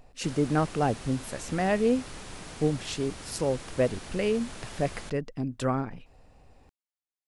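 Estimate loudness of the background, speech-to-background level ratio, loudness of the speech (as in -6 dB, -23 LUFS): -42.5 LUFS, 13.0 dB, -29.5 LUFS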